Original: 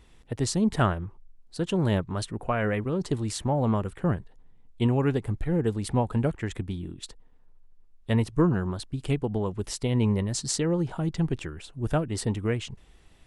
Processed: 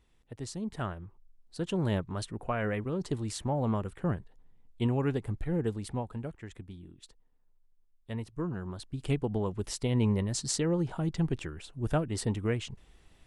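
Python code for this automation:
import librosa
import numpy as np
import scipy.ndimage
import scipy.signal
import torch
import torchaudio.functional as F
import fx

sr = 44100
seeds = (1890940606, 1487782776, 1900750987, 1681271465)

y = fx.gain(x, sr, db=fx.line((0.76, -12.5), (1.64, -5.0), (5.66, -5.0), (6.21, -13.0), (8.39, -13.0), (9.1, -3.0)))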